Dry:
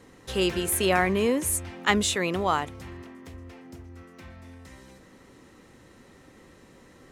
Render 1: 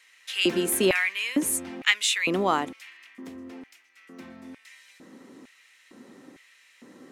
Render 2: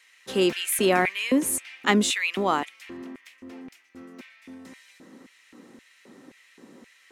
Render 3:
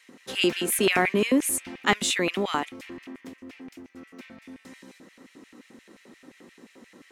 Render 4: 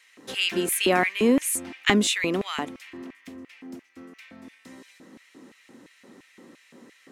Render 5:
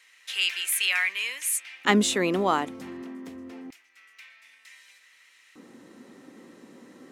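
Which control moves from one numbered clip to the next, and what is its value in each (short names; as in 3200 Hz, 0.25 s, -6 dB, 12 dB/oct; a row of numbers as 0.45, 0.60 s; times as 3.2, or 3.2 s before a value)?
LFO high-pass, rate: 1.1, 1.9, 5.7, 2.9, 0.27 Hz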